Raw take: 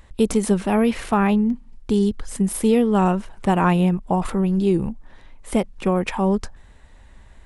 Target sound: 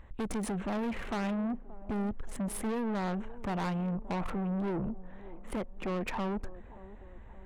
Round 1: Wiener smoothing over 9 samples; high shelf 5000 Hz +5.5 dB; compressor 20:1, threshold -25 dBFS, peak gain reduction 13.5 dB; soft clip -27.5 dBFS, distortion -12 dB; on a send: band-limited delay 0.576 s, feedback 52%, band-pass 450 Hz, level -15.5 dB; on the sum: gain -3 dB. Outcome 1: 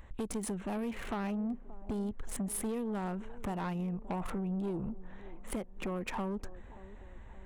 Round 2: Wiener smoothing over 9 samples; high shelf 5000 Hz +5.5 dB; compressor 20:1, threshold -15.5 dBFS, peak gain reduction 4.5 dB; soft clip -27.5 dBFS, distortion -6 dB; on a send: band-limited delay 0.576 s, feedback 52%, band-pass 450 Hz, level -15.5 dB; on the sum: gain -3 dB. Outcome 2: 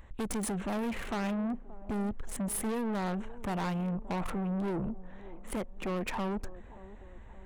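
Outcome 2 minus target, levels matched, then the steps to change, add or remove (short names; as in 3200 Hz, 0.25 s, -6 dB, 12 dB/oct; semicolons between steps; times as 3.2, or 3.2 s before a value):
8000 Hz band +5.5 dB
change: high shelf 5000 Hz -6.5 dB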